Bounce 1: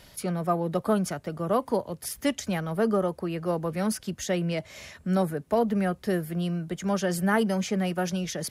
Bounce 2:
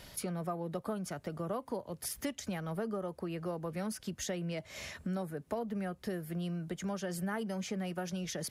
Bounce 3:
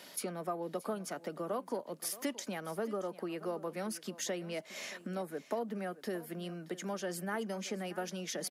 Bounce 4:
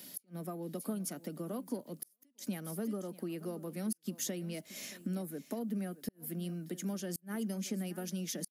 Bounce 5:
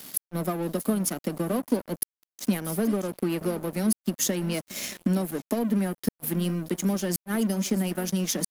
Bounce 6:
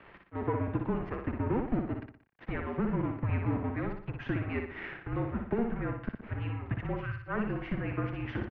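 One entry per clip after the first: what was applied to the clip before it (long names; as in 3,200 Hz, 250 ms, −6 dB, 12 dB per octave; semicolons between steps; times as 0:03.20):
downward compressor 4 to 1, threshold −36 dBFS, peak gain reduction 15 dB
high-pass filter 220 Hz 24 dB per octave; single-tap delay 626 ms −17 dB; level +1 dB
drawn EQ curve 270 Hz 0 dB, 400 Hz −9 dB, 980 Hz −16 dB, 7,100 Hz −3 dB, 14,000 Hz +7 dB; gate with flip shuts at −30 dBFS, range −38 dB; level +5 dB
dead-zone distortion −50 dBFS; in parallel at −1.5 dB: speech leveller 0.5 s; on the sum: level +8.5 dB
healed spectral selection 0:06.95–0:07.17, 380–1,200 Hz; repeating echo 60 ms, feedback 43%, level −5 dB; single-sideband voice off tune −240 Hz 350–2,500 Hz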